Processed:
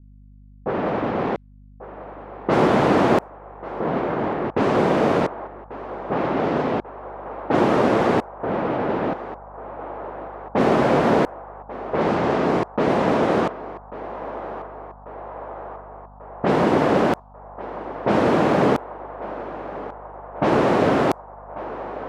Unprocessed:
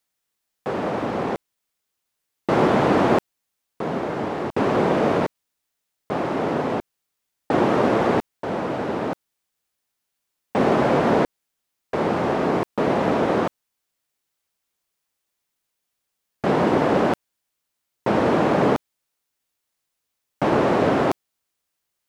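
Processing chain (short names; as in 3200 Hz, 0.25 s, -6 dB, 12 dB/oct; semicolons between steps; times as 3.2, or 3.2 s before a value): hum 50 Hz, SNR 28 dB; in parallel at -2 dB: compressor, threshold -34 dBFS, peak gain reduction 19 dB; on the sum: low-pass opened by the level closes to 400 Hz, open at -14.5 dBFS; narrowing echo 1.141 s, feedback 79%, band-pass 870 Hz, level -12 dB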